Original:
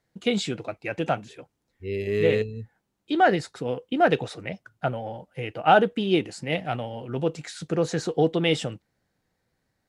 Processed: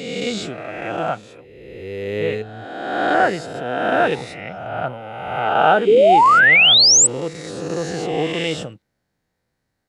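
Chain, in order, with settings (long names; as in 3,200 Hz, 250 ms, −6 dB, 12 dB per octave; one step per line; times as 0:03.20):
peak hold with a rise ahead of every peak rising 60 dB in 1.72 s
dynamic equaliser 1,200 Hz, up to +4 dB, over −27 dBFS, Q 1.2
sound drawn into the spectrogram rise, 0:05.87–0:07.07, 390–8,200 Hz −8 dBFS
level −3 dB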